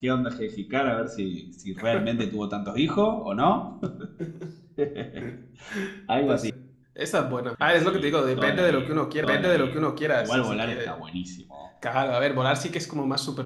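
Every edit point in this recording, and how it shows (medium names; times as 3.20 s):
6.50 s: sound stops dead
7.55 s: sound stops dead
9.24 s: repeat of the last 0.86 s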